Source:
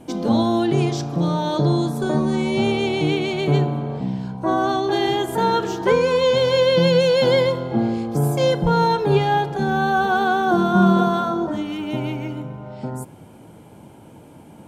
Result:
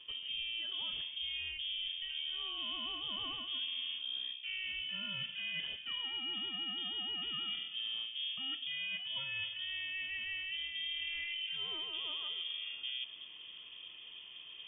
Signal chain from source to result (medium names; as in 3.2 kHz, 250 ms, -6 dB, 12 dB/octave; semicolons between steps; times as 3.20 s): reverse; compression 16:1, threshold -30 dBFS, peak gain reduction 20 dB; reverse; frequency inversion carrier 3.4 kHz; trim -7 dB